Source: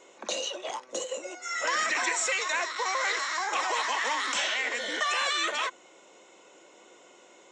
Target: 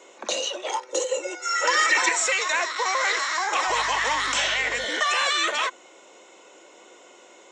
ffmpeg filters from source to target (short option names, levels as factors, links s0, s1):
-filter_complex "[0:a]highpass=230,asettb=1/sr,asplit=3[s0][s1][s2];[s0]atrim=end=0.664[s3];[s1]atrim=start=0.66:end=2.09,asetpts=PTS-STARTPTS,afade=t=in:d=0.004:c=qsin,afade=t=out:st=1.426:d=0.004:c=qsin,aecho=1:1:2.2:0.85,atrim=end_sample=63063[s4];[s2]atrim=start=2.086[s5];[s3][s4]acrossfade=d=0.004:c1=hsin:c2=qsin[s6];[s6][s5]acrossfade=d=0.004:c1=qsin:c2=hsin,asettb=1/sr,asplit=3[s7][s8][s9];[s7]atrim=end=3.684[s10];[s8]atrim=start=3.68:end=4.85,asetpts=PTS-STARTPTS,afade=t=in:d=0.004:c=qsin,afade=t=out:st=1.166:d=0.004:c=qsin,aeval=exprs='val(0)+0.00251*(sin(2*PI*50*n/s)+sin(2*PI*2*50*n/s)/2+sin(2*PI*3*50*n/s)/3+sin(2*PI*4*50*n/s)/4+sin(2*PI*5*50*n/s)/5)':c=same[s11];[s9]atrim=start=4.846[s12];[s10][s11]acrossfade=d=0.004:c1=hsin:c2=qsin[s13];[s13][s12]acrossfade=d=0.004:c1=qsin:c2=hsin,volume=1.78"